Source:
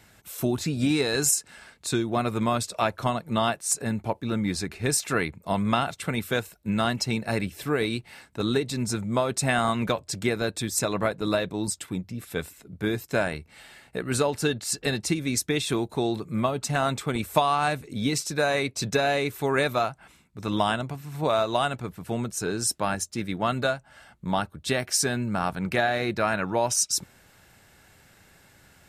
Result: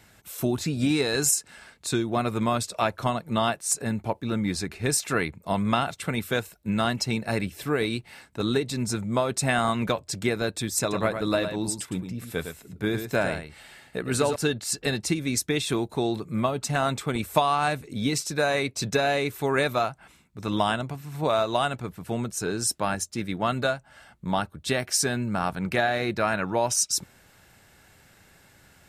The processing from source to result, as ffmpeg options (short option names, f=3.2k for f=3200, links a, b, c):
-filter_complex "[0:a]asettb=1/sr,asplit=3[a][b][c];[a]atrim=end=10.804[d];[b]atrim=start=10.8:end=14.36,asetpts=PTS-STARTPTS,afade=t=in:d=0.004:c=qsin,afade=t=out:st=3.556:d=0.004:c=qsin,aecho=1:1:108:0.398,atrim=end_sample=156996[e];[c]atrim=start=14.356[f];[d][e]acrossfade=d=0.004:c1=hsin:c2=qsin[g];[g][f]acrossfade=d=0.004:c1=qsin:c2=hsin"